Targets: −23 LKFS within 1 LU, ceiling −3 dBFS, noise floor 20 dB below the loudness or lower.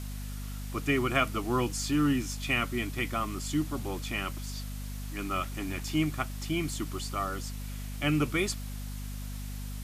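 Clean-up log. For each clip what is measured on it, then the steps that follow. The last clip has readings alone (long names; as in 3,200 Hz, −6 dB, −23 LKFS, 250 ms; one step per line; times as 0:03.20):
mains hum 50 Hz; hum harmonics up to 250 Hz; level of the hum −35 dBFS; background noise floor −38 dBFS; target noise floor −52 dBFS; integrated loudness −32.0 LKFS; sample peak −10.5 dBFS; target loudness −23.0 LKFS
→ hum removal 50 Hz, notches 5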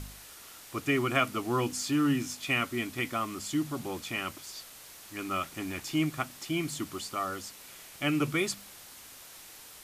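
mains hum none found; background noise floor −50 dBFS; target noise floor −52 dBFS
→ broadband denoise 6 dB, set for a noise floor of −50 dBFS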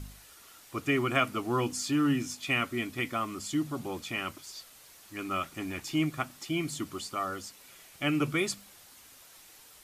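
background noise floor −55 dBFS; integrated loudness −31.5 LKFS; sample peak −10.0 dBFS; target loudness −23.0 LKFS
→ level +8.5 dB
brickwall limiter −3 dBFS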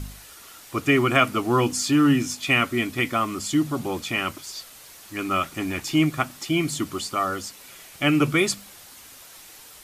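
integrated loudness −23.0 LKFS; sample peak −3.0 dBFS; background noise floor −46 dBFS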